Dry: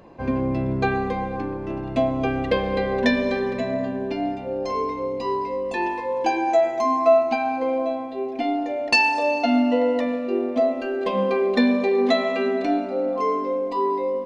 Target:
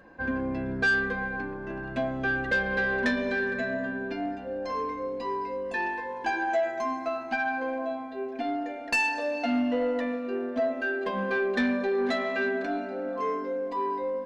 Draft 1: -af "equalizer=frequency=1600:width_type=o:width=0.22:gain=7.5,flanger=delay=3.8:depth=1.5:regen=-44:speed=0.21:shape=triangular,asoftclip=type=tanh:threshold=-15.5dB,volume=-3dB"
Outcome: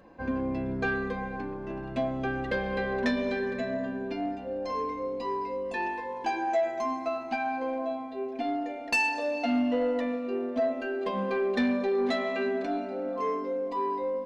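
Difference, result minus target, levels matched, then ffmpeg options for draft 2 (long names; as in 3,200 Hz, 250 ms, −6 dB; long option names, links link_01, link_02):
2,000 Hz band −5.0 dB
-af "equalizer=frequency=1600:width_type=o:width=0.22:gain=19,flanger=delay=3.8:depth=1.5:regen=-44:speed=0.21:shape=triangular,asoftclip=type=tanh:threshold=-15.5dB,volume=-3dB"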